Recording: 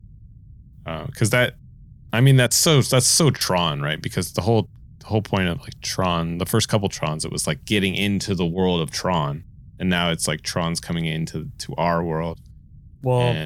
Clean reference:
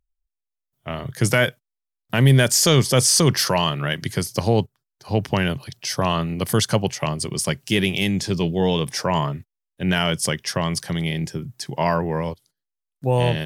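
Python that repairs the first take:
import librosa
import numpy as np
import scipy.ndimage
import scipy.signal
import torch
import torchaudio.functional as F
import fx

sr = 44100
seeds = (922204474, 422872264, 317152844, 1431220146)

y = fx.fix_interpolate(x, sr, at_s=(2.47, 3.37, 8.54), length_ms=38.0)
y = fx.noise_reduce(y, sr, print_start_s=12.52, print_end_s=13.02, reduce_db=30.0)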